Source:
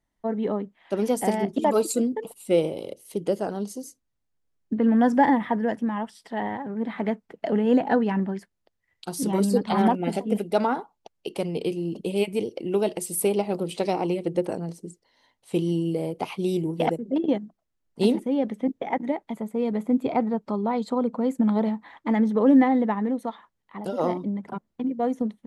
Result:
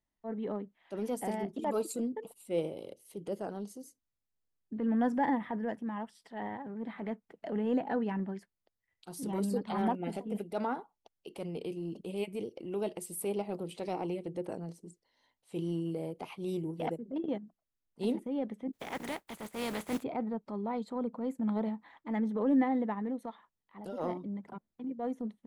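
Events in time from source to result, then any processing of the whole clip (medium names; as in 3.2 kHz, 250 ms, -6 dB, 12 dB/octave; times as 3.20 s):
18.73–20.02 s: spectral contrast reduction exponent 0.45
whole clip: dynamic bell 5.6 kHz, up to -4 dB, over -50 dBFS, Q 0.93; transient shaper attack -6 dB, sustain -1 dB; trim -9 dB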